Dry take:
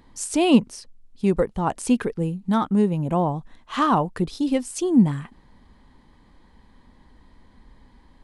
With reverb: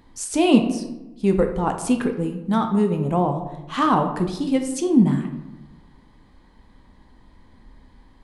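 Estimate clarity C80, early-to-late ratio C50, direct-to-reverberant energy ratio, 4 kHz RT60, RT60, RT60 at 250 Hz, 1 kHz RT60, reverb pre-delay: 11.0 dB, 8.5 dB, 5.0 dB, 0.55 s, 1.0 s, 1.2 s, 0.95 s, 10 ms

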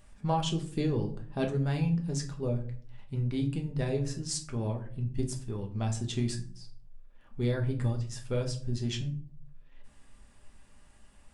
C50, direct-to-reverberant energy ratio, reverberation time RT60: 12.0 dB, 2.0 dB, 0.50 s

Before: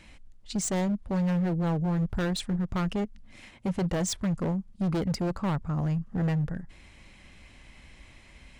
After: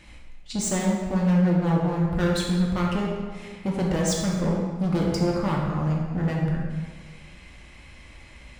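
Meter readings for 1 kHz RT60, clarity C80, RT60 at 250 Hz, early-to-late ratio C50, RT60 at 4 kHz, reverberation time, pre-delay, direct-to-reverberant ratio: 1.6 s, 3.0 dB, 1.6 s, 1.0 dB, 1.1 s, 1.6 s, 3 ms, −3.0 dB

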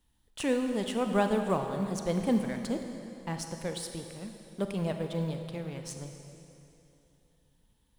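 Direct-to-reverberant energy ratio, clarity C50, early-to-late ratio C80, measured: 5.5 dB, 6.0 dB, 7.0 dB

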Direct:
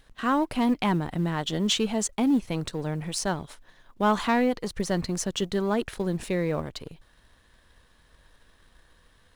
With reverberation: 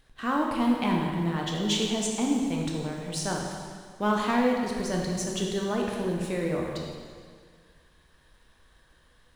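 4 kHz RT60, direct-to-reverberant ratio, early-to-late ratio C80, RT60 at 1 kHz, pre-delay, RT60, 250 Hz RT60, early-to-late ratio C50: 1.8 s, −1.0 dB, 3.0 dB, 1.9 s, 7 ms, 1.9 s, 1.9 s, 1.5 dB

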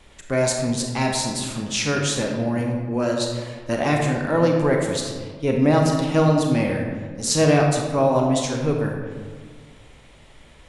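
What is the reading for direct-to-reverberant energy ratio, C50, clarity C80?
1.0 dB, 2.5 dB, 4.5 dB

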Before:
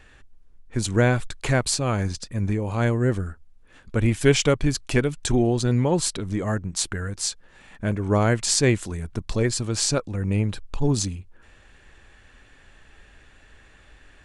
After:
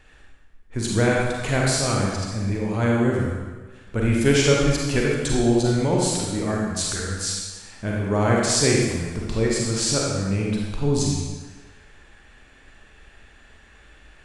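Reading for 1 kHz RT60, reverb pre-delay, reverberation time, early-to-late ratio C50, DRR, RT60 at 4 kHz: 1.4 s, 35 ms, 1.4 s, −1.0 dB, −3.0 dB, 1.2 s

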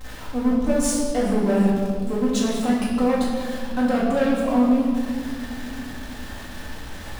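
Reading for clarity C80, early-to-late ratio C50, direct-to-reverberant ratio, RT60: 2.5 dB, 0.5 dB, −6.5 dB, 2.2 s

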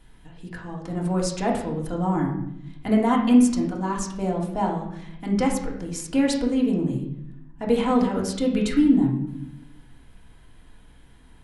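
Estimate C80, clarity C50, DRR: 8.5 dB, 5.5 dB, −2.5 dB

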